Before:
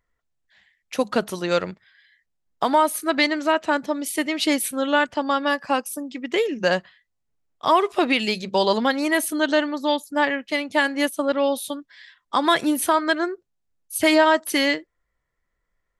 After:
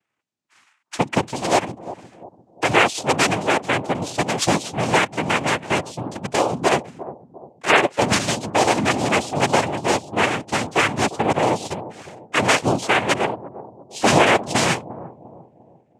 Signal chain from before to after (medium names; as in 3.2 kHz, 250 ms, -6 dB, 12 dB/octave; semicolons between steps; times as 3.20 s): 1.35–3.16 s: treble shelf 5.2 kHz +10 dB; noise-vocoded speech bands 4; bucket-brigade echo 349 ms, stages 2048, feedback 41%, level -14 dB; trim +2 dB